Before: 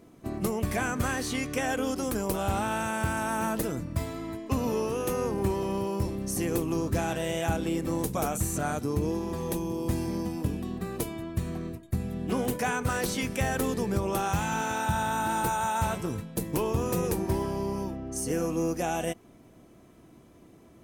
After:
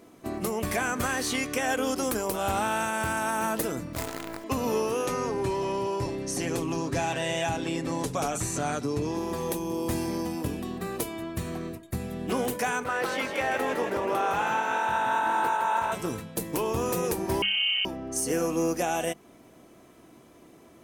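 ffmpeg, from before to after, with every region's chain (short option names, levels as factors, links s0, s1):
-filter_complex "[0:a]asettb=1/sr,asplit=3[s0][s1][s2];[s0]atrim=end=3.934[s3];[s1]atrim=start=3.93:end=4.44,asetpts=PTS-STARTPTS,afade=t=in:d=0.004:c=qsin,afade=t=out:st=0.506:d=0.004:c=qsin,equalizer=f=3400:t=o:w=0.93:g=-6.5,acrusher=bits=6:dc=4:mix=0:aa=0.000001,volume=21.1,asoftclip=hard,volume=0.0473[s4];[s2]atrim=start=4.436[s5];[s3][s4]acrossfade=d=0.004:c1=hsin:c2=qsin[s6];[s6][s5]acrossfade=d=0.004:c1=qsin:c2=hsin,asettb=1/sr,asplit=3[s7][s8][s9];[s7]atrim=end=5.064[s10];[s8]atrim=start=5.06:end=9.17,asetpts=PTS-STARTPTS,afade=t=in:d=0.004:c=qsin,afade=t=out:st=4.106:d=0.004:c=qsin,lowpass=6900,aecho=1:1:7.2:0.5,atrim=end_sample=181251,acrossover=split=180|3000[s11][s12][s13];[s12]acompressor=threshold=0.0398:ratio=6:attack=3.2:release=140:knee=2.83:detection=peak[s14];[s11][s14][s13]amix=inputs=3:normalize=0[s15];[s9]atrim=start=9.166[s16];[s10][s15]acrossfade=d=0.004:c1=hsin:c2=qsin[s17];[s17][s16]acrossfade=d=0.004:c1=qsin:c2=hsin,asettb=1/sr,asplit=3[s18][s19][s20];[s18]atrim=end=12.844[s21];[s19]atrim=start=12.84:end=15.92,asetpts=PTS-STARTPTS,afade=t=in:d=0.004:c=qsin,afade=t=out:st=3.076:d=0.004:c=qsin,bass=f=250:g=-12,treble=f=4000:g=-15,asplit=8[s22][s23][s24][s25][s26][s27][s28][s29];[s23]adelay=160,afreqshift=47,volume=0.501[s30];[s24]adelay=320,afreqshift=94,volume=0.282[s31];[s25]adelay=480,afreqshift=141,volume=0.157[s32];[s26]adelay=640,afreqshift=188,volume=0.0881[s33];[s27]adelay=800,afreqshift=235,volume=0.0495[s34];[s28]adelay=960,afreqshift=282,volume=0.0275[s35];[s29]adelay=1120,afreqshift=329,volume=0.0155[s36];[s22][s30][s31][s32][s33][s34][s35][s36]amix=inputs=8:normalize=0,atrim=end_sample=135828[s37];[s20]atrim=start=15.916[s38];[s21][s37]acrossfade=d=0.004:c1=hsin:c2=qsin[s39];[s39][s38]acrossfade=d=0.004:c1=qsin:c2=hsin,asettb=1/sr,asplit=3[s40][s41][s42];[s40]atrim=end=17.424[s43];[s41]atrim=start=17.42:end=17.85,asetpts=PTS-STARTPTS,afade=t=in:d=0.004:c=qsin,afade=t=out:st=0.426:d=0.004:c=qsin,bandreject=f=2100:w=9.9,lowpass=f=2700:t=q:w=0.5098,lowpass=f=2700:t=q:w=0.6013,lowpass=f=2700:t=q:w=0.9,lowpass=f=2700:t=q:w=2.563,afreqshift=-3200[s44];[s42]atrim=start=17.846[s45];[s43][s44]acrossfade=d=0.004:c1=hsin:c2=qsin[s46];[s46][s45]acrossfade=d=0.004:c1=qsin:c2=hsin,lowshelf=f=220:g=-10.5,bandreject=f=50:t=h:w=6,bandreject=f=100:t=h:w=6,bandreject=f=150:t=h:w=6,bandreject=f=200:t=h:w=6,alimiter=limit=0.0841:level=0:latency=1:release=220,volume=1.78"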